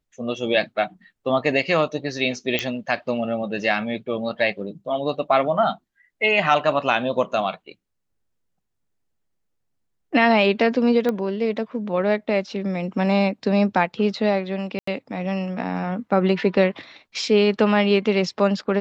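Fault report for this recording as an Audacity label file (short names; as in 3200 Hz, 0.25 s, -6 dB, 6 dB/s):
2.590000	2.590000	pop -7 dBFS
11.090000	11.090000	pop -12 dBFS
14.790000	14.870000	gap 84 ms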